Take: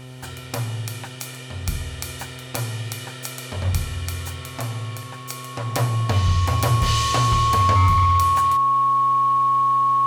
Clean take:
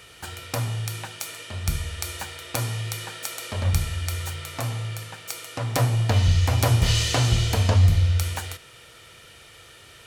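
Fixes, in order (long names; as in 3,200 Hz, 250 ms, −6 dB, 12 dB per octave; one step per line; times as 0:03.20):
clipped peaks rebuilt −11.5 dBFS
hum removal 128 Hz, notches 8
notch filter 1,100 Hz, Q 30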